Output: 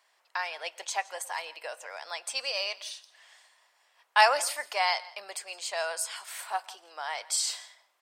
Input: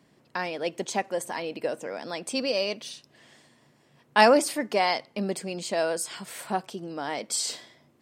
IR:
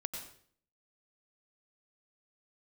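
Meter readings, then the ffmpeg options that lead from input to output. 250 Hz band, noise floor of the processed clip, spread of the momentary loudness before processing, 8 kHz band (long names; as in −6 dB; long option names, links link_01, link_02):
below −30 dB, −70 dBFS, 15 LU, 0.0 dB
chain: -filter_complex "[0:a]highpass=frequency=770:width=0.5412,highpass=frequency=770:width=1.3066,aecho=1:1:167:0.0794,asplit=2[link_01][link_02];[1:a]atrim=start_sample=2205,adelay=20[link_03];[link_02][link_03]afir=irnorm=-1:irlink=0,volume=-18.5dB[link_04];[link_01][link_04]amix=inputs=2:normalize=0"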